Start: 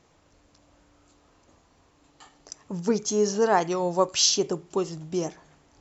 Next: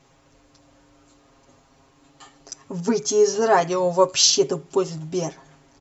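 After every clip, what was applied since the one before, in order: comb 7.4 ms, depth 89%; gain +2 dB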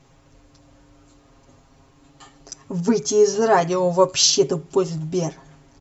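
low shelf 190 Hz +9 dB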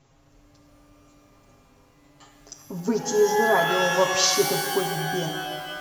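shimmer reverb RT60 1.8 s, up +12 st, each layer -2 dB, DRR 5.5 dB; gain -6 dB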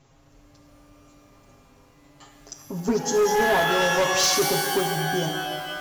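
hard clip -18.5 dBFS, distortion -12 dB; gain +2 dB

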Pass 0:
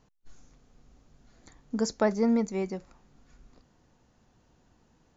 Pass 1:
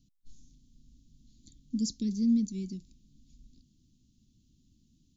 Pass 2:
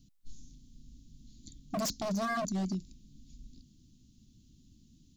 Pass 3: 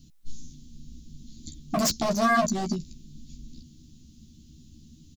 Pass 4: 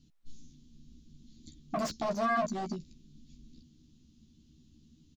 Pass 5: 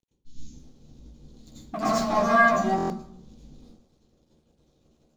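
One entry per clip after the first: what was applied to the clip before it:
elliptic band-stop 270–3500 Hz, stop band 50 dB
wavefolder -33 dBFS; gain +5.5 dB
doubler 13 ms -3.5 dB; gain +8 dB
overdrive pedal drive 10 dB, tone 1300 Hz, clips at -15 dBFS; gain -6 dB
crossover distortion -56.5 dBFS; plate-style reverb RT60 0.69 s, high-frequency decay 0.5×, pre-delay 75 ms, DRR -10 dB; stuck buffer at 2.76, samples 1024, times 5

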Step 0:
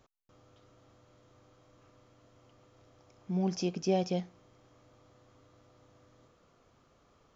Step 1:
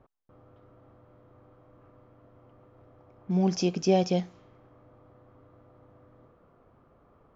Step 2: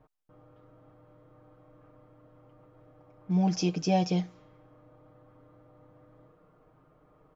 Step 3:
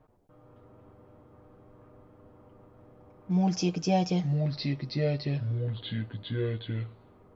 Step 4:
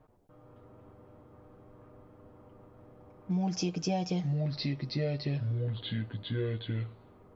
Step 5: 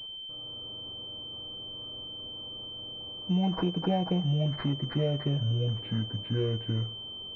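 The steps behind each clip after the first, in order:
low-pass opened by the level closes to 1200 Hz, open at -31.5 dBFS; gain +6 dB
comb 6.5 ms, depth 78%; gain -3 dB
echoes that change speed 81 ms, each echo -4 st, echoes 2
compressor 4:1, threshold -28 dBFS, peak gain reduction 7.5 dB
pulse-width modulation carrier 3100 Hz; gain +3.5 dB

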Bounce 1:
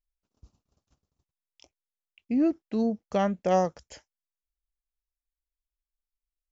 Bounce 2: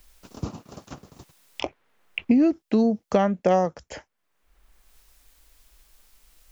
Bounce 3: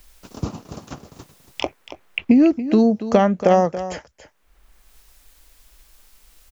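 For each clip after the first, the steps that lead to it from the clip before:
three-band squash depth 100%; gain +5.5 dB
echo 0.281 s -13 dB; gain +5 dB

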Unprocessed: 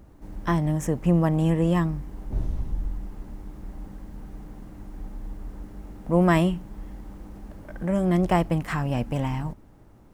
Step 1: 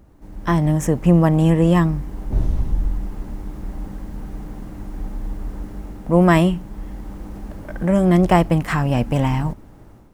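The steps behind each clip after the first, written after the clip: AGC gain up to 8.5 dB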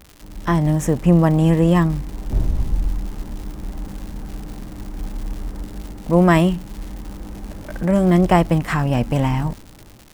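crackle 220/s -30 dBFS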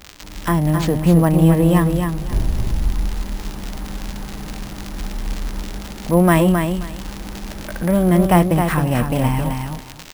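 on a send: feedback echo 0.265 s, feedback 15%, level -6 dB; on the sum: careless resampling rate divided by 4×, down none, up hold; mismatched tape noise reduction encoder only

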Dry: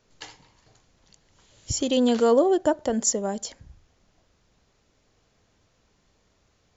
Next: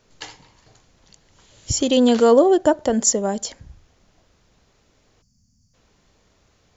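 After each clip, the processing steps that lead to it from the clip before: spectral gain 5.22–5.74, 270–4400 Hz -27 dB; gain +5.5 dB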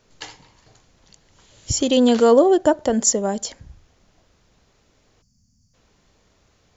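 nothing audible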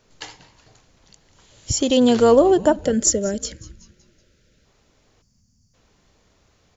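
spectral gain 2.81–4.65, 630–1300 Hz -16 dB; frequency-shifting echo 0.188 s, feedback 49%, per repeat -140 Hz, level -19 dB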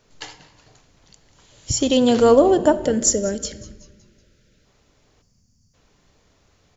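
shoebox room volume 840 m³, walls mixed, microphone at 0.35 m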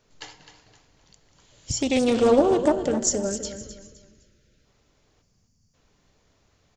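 on a send: feedback echo 0.258 s, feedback 32%, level -11 dB; on the sum: Doppler distortion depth 0.28 ms; gain -5 dB

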